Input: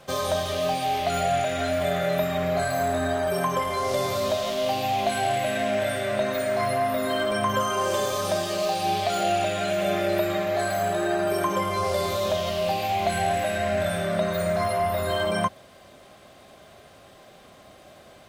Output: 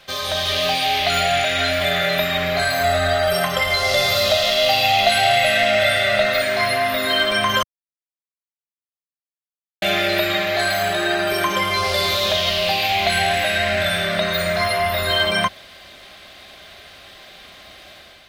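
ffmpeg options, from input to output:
-filter_complex "[0:a]asettb=1/sr,asplit=3[a][b][c];[a]atrim=end=2.844[d];[b]atrim=start=2.84:end=6.42,asetpts=PTS-STARTPTS,afade=t=in:d=0.004:c=qsin,afade=t=out:st=3.576:d=0.004:c=qsin,aecho=1:1:1.5:0.71,atrim=end_sample=157878[e];[c]atrim=start=6.416[f];[d][e]acrossfade=d=0.004:c1=hsin:c2=qsin[g];[g][f]acrossfade=d=0.004:c1=qsin:c2=hsin,asplit=3[h][i][j];[h]atrim=end=7.63,asetpts=PTS-STARTPTS,afade=t=out:st=7.626:d=0.004:c=hsin[k];[i]atrim=start=7.63:end=9.82,asetpts=PTS-STARTPTS,volume=0[l];[j]atrim=start=9.82,asetpts=PTS-STARTPTS,afade=t=in:d=0.004:c=hsin[m];[k][l][m]concat=n=3:v=0:a=1,equalizer=f=125:t=o:w=1:g=-10,equalizer=f=250:t=o:w=1:g=-6,equalizer=f=500:t=o:w=1:g=-7,equalizer=f=1k:t=o:w=1:g=-5,equalizer=f=2k:t=o:w=1:g=4,equalizer=f=4k:t=o:w=1:g=7,equalizer=f=8k:t=o:w=1:g=-6,dynaudnorm=f=110:g=7:m=6dB,volume=3.5dB"

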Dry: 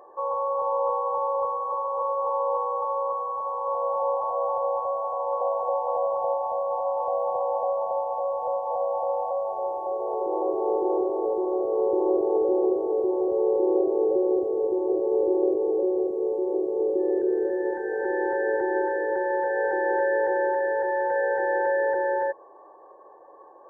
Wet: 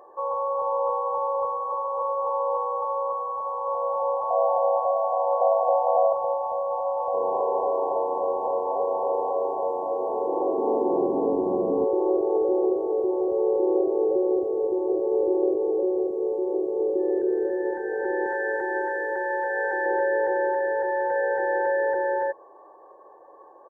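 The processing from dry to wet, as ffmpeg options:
-filter_complex "[0:a]asettb=1/sr,asplit=3[a][b][c];[a]atrim=end=4.304[d];[b]atrim=start=4.3:end=6.13,asetpts=PTS-STARTPTS,afade=t=in:d=0.004:c=qsin,afade=t=out:st=1.826:d=0.004:c=qsin,equalizer=f=680:w=4.2:g=13.5[e];[c]atrim=start=6.126[f];[d][e]acrossfade=d=0.004:c1=hsin:c2=qsin[g];[g][f]acrossfade=d=0.004:c1=qsin:c2=hsin,asplit=3[h][i][j];[h]afade=t=out:st=7.13:d=0.02[k];[i]asplit=5[l][m][n][o][p];[m]adelay=319,afreqshift=-89,volume=-4dB[q];[n]adelay=638,afreqshift=-178,volume=-14.2dB[r];[o]adelay=957,afreqshift=-267,volume=-24.3dB[s];[p]adelay=1276,afreqshift=-356,volume=-34.5dB[t];[l][q][r][s][t]amix=inputs=5:normalize=0,afade=t=in:st=7.13:d=0.02,afade=t=out:st=11.84:d=0.02[u];[j]afade=t=in:st=11.84:d=0.02[v];[k][u][v]amix=inputs=3:normalize=0,asettb=1/sr,asplit=3[w][x][y];[w]atrim=end=18.264[z];[x]atrim=start=18.26:end=19.86,asetpts=PTS-STARTPTS,afade=t=in:d=0.004:c=qsin,afade=t=out:st=1.596:d=0.004:c=qsin,tiltshelf=f=910:g=-6.5[aa];[y]atrim=start=19.856[ab];[z][aa]acrossfade=d=0.004:c1=hsin:c2=qsin[ac];[ac][ab]acrossfade=d=0.004:c1=qsin:c2=hsin"

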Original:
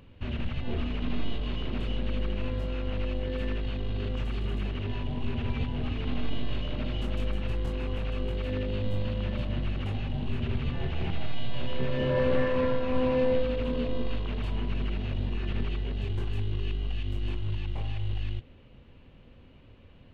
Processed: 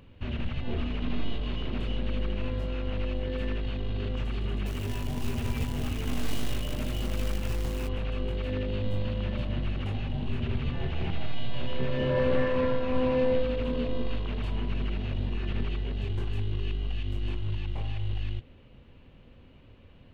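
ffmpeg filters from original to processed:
-filter_complex "[0:a]asplit=3[a][b][c];[a]afade=t=out:st=4.65:d=0.02[d];[b]acrusher=bits=4:mode=log:mix=0:aa=0.000001,afade=t=in:st=4.65:d=0.02,afade=t=out:st=7.87:d=0.02[e];[c]afade=t=in:st=7.87:d=0.02[f];[d][e][f]amix=inputs=3:normalize=0"

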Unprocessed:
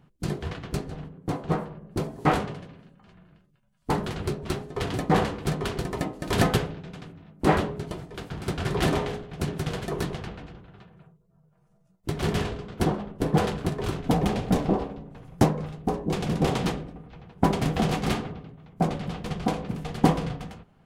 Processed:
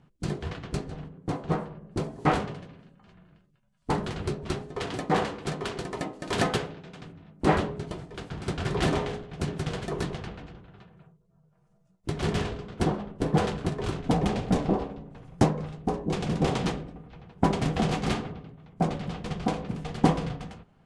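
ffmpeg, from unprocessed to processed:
-filter_complex "[0:a]asettb=1/sr,asplit=3[a][b][c];[a]atrim=end=4.774[d];[b]atrim=start=4.77:end=7,asetpts=PTS-STARTPTS,afade=t=in:d=0.004:c=qsin,afade=t=out:st=2.226:d=0.004:c=qsin,lowshelf=f=140:g=-11[e];[c]atrim=start=6.996[f];[d][e]acrossfade=d=0.004:c1=hsin:c2=qsin[g];[g][f]acrossfade=d=0.004:c1=qsin:c2=hsin,lowpass=f=9.5k:w=0.5412,lowpass=f=9.5k:w=1.3066,volume=-1.5dB"

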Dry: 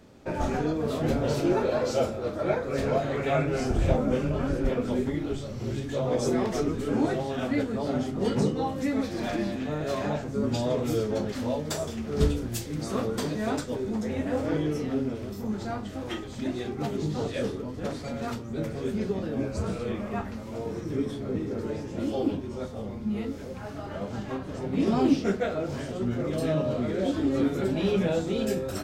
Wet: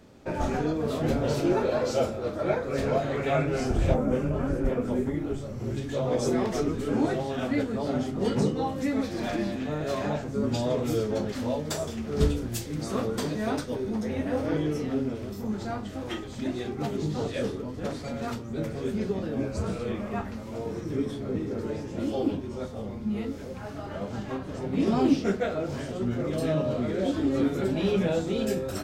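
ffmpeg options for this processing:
-filter_complex "[0:a]asettb=1/sr,asplit=3[a][b][c];[a]atrim=end=3.944[d];[b]atrim=start=3.94:end=5.77,asetpts=PTS-STARTPTS,afade=t=in:d=0.004:c=qsin,afade=t=out:st=1.826:d=0.004:c=qsin,equalizer=f=3.9k:w=1:g=-8.5[e];[c]atrim=start=5.766[f];[d][e]acrossfade=d=0.004:c1=hsin:c2=qsin[g];[g][f]acrossfade=d=0.004:c1=qsin:c2=hsin,asettb=1/sr,asplit=3[h][i][j];[h]atrim=end=13.434[k];[i]atrim=start=13.43:end=14.57,asetpts=PTS-STARTPTS,afade=t=in:d=0.004:c=qsin,afade=t=out:st=1.136:d=0.004:c=qsin,bandreject=f=7.4k:w=6.2[l];[j]atrim=start=14.566[m];[k][l]acrossfade=d=0.004:c1=hsin:c2=qsin[n];[n][m]acrossfade=d=0.004:c1=qsin:c2=hsin"

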